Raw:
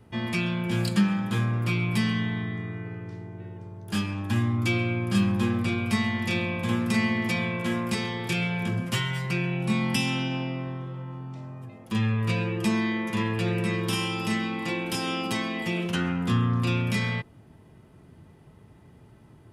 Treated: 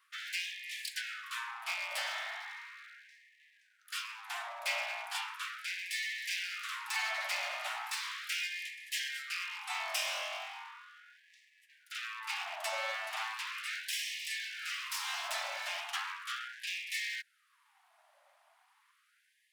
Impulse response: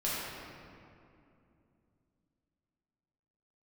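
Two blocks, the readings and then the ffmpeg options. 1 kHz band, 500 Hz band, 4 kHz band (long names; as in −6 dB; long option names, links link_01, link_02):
−6.5 dB, −16.0 dB, −3.5 dB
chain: -af "aeval=exprs='abs(val(0))':channel_layout=same,afftfilt=real='re*gte(b*sr/1024,550*pow(1700/550,0.5+0.5*sin(2*PI*0.37*pts/sr)))':imag='im*gte(b*sr/1024,550*pow(1700/550,0.5+0.5*sin(2*PI*0.37*pts/sr)))':win_size=1024:overlap=0.75,volume=-3dB"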